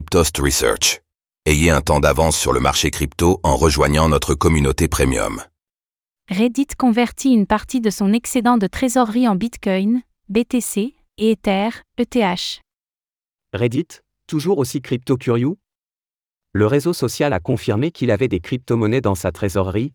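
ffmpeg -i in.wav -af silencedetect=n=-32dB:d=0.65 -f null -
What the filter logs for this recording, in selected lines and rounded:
silence_start: 5.43
silence_end: 6.29 | silence_duration: 0.86
silence_start: 12.56
silence_end: 13.53 | silence_duration: 0.98
silence_start: 15.54
silence_end: 16.55 | silence_duration: 1.01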